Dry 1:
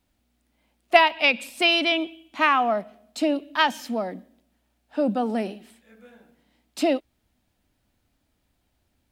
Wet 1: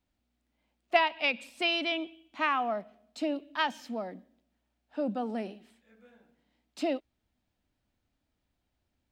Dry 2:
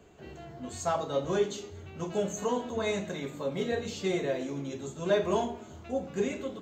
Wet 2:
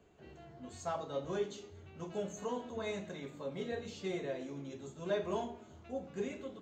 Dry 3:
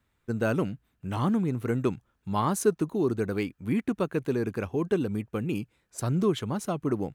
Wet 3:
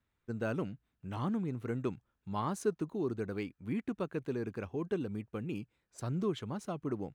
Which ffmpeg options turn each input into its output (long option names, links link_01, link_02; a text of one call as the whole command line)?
ffmpeg -i in.wav -af "equalizer=frequency=12000:width_type=o:width=0.84:gain=-10,volume=-8.5dB" out.wav